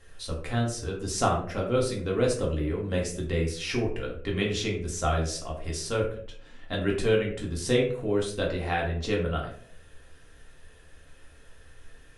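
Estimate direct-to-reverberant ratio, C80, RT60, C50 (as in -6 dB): -2.0 dB, 10.0 dB, 0.60 s, 6.0 dB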